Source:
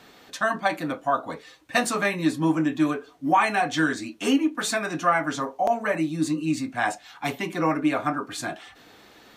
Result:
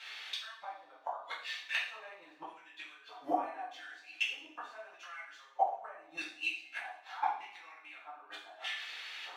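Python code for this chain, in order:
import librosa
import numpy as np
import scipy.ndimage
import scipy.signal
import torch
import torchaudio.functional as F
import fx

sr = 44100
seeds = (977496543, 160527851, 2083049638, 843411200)

y = scipy.signal.medfilt(x, 5)
y = scipy.signal.sosfilt(scipy.signal.butter(2, 490.0, 'highpass', fs=sr, output='sos'), y)
y = fx.high_shelf(y, sr, hz=2600.0, db=11.0)
y = fx.gate_flip(y, sr, shuts_db=-21.0, range_db=-28)
y = fx.rider(y, sr, range_db=4, speed_s=2.0)
y = fx.filter_lfo_bandpass(y, sr, shape='square', hz=0.81, low_hz=810.0, high_hz=2500.0, q=1.8)
y = fx.rev_double_slope(y, sr, seeds[0], early_s=0.52, late_s=2.3, knee_db=-26, drr_db=-7.0)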